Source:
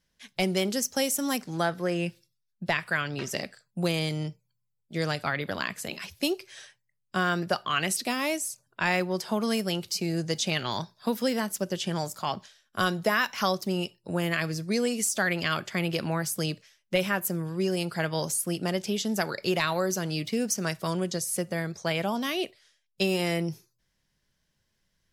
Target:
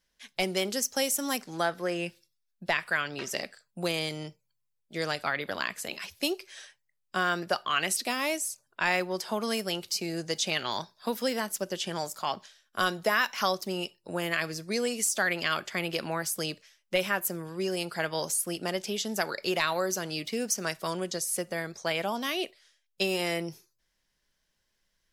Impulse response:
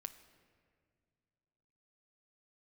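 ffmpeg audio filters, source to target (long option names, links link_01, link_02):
-af "equalizer=frequency=120:width=0.66:gain=-11"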